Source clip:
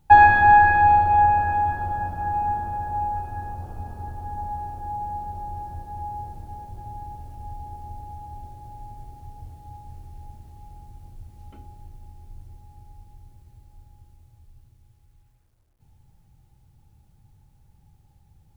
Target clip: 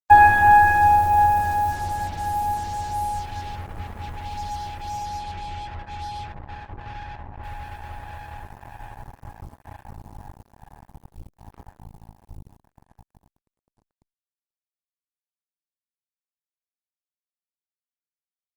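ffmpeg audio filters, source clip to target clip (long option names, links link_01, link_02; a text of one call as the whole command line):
ffmpeg -i in.wav -filter_complex "[0:a]asettb=1/sr,asplit=3[link_01][link_02][link_03];[link_01]atrim=end=5.024[link_04];[link_02]atrim=start=5.02:end=7.44,asetpts=PTS-STARTPTS,afade=type=in:duration=0.004:curve=qsin,afade=type=out:start_time=2.416:duration=0.004:curve=qsin,lowpass=1500[link_05];[link_03]atrim=start=7.436[link_06];[link_04][link_05]acrossfade=duration=0.004:curve1=hsin:curve2=qsin[link_07];[link_07][link_06]acrossfade=duration=0.004:curve1=qsin:curve2=hsin,acrusher=bits=5:mix=0:aa=0.5" -ar 48000 -c:a libopus -b:a 24k out.opus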